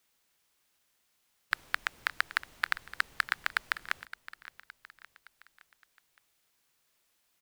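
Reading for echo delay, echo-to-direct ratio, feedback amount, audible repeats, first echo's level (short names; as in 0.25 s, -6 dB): 0.566 s, -15.0 dB, 50%, 4, -16.0 dB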